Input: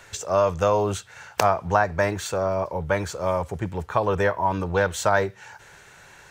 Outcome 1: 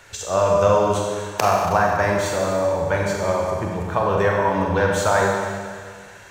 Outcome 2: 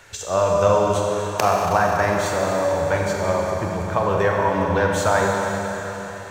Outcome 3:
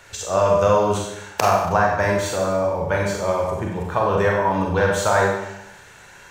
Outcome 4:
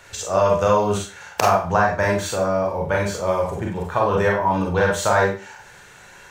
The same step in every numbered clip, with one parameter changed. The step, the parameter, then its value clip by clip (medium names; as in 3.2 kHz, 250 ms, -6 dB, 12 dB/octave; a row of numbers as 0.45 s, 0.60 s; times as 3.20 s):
Schroeder reverb, RT60: 1.9 s, 4 s, 0.87 s, 0.35 s